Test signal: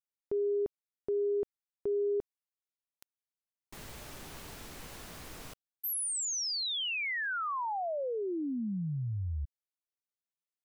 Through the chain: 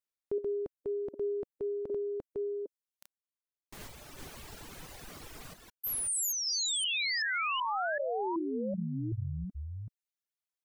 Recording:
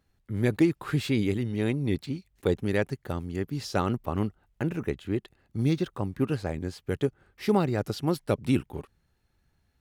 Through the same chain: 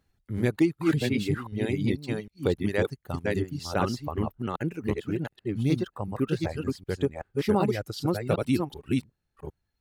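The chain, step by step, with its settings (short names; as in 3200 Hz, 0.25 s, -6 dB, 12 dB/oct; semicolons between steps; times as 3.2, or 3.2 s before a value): reverse delay 0.38 s, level -1.5 dB; reverb removal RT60 1.5 s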